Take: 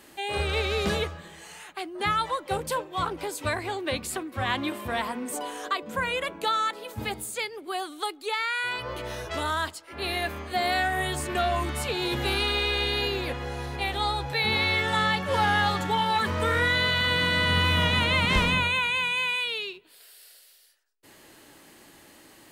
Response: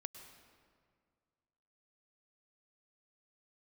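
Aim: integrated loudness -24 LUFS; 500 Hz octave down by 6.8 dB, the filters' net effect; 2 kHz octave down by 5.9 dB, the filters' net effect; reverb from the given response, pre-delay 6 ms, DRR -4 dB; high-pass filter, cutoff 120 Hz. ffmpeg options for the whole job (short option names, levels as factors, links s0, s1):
-filter_complex "[0:a]highpass=120,equalizer=f=500:t=o:g=-8.5,equalizer=f=2000:t=o:g=-7,asplit=2[s0][s1];[1:a]atrim=start_sample=2205,adelay=6[s2];[s1][s2]afir=irnorm=-1:irlink=0,volume=2.37[s3];[s0][s3]amix=inputs=2:normalize=0,volume=1.12"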